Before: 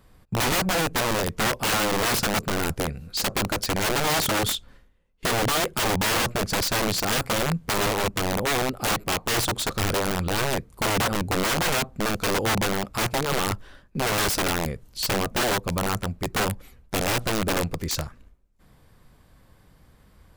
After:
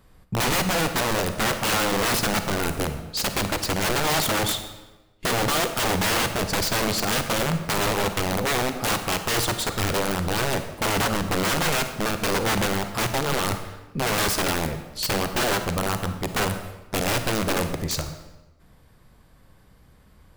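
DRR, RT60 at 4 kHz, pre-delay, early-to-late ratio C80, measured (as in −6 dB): 8.0 dB, 0.85 s, 36 ms, 10.5 dB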